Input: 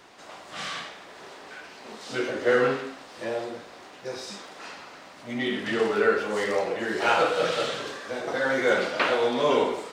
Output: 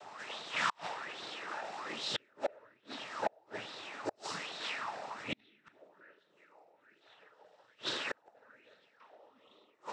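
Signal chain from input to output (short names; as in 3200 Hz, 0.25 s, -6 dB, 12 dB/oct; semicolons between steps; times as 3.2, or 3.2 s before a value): noise vocoder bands 12; flipped gate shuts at -23 dBFS, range -39 dB; LFO bell 1.2 Hz 690–3900 Hz +15 dB; gain -3.5 dB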